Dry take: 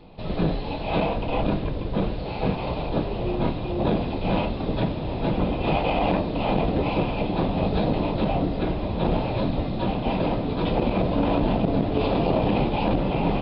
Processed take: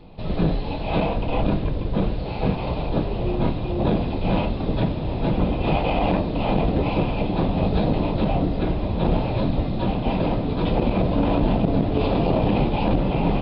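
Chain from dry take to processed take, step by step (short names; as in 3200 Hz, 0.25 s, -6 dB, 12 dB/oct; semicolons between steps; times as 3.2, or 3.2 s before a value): low shelf 190 Hz +5 dB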